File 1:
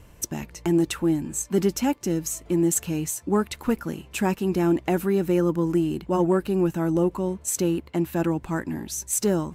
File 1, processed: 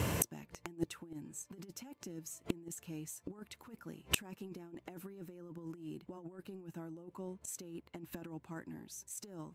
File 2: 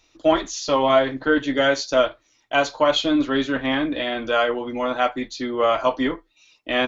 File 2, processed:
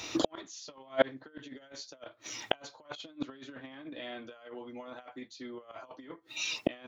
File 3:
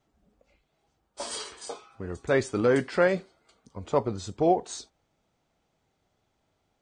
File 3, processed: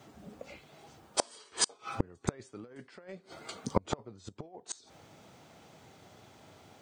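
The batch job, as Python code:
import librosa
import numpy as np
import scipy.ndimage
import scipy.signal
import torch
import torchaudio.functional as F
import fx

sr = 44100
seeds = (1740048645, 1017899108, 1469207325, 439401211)

y = scipy.signal.sosfilt(scipy.signal.butter(4, 86.0, 'highpass', fs=sr, output='sos'), x)
y = fx.over_compress(y, sr, threshold_db=-25.0, ratio=-0.5)
y = fx.gate_flip(y, sr, shuts_db=-26.0, range_db=-36)
y = y * 10.0 ** (15.0 / 20.0)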